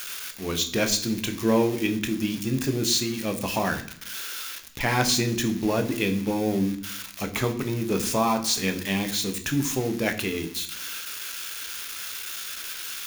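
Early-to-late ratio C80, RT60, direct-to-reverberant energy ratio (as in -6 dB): 16.0 dB, 0.65 s, 6.0 dB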